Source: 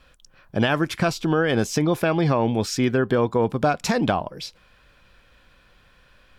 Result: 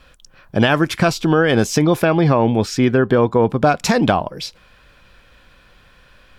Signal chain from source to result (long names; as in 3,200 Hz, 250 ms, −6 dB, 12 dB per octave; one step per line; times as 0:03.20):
0:02.05–0:03.67: high-shelf EQ 4,000 Hz −7.5 dB
level +6 dB